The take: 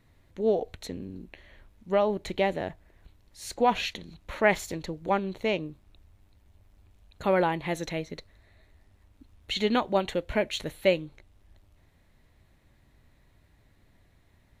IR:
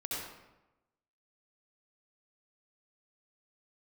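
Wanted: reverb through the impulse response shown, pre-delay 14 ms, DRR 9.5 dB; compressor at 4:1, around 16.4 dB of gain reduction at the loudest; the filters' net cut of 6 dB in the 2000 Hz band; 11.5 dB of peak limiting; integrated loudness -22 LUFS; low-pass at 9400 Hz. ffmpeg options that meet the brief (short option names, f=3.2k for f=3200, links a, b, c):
-filter_complex "[0:a]lowpass=9.4k,equalizer=f=2k:t=o:g=-7.5,acompressor=threshold=-39dB:ratio=4,alimiter=level_in=12.5dB:limit=-24dB:level=0:latency=1,volume=-12.5dB,asplit=2[a][b];[1:a]atrim=start_sample=2205,adelay=14[c];[b][c]afir=irnorm=-1:irlink=0,volume=-12.5dB[d];[a][d]amix=inputs=2:normalize=0,volume=25.5dB"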